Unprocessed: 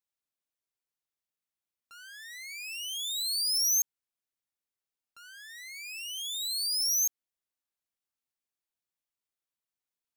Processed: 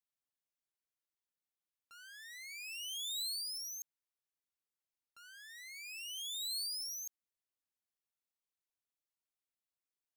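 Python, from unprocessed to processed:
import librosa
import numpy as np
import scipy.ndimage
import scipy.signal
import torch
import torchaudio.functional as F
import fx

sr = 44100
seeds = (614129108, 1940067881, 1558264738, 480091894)

y = fx.over_compress(x, sr, threshold_db=-32.0, ratio=-1.0)
y = y * librosa.db_to_amplitude(-8.5)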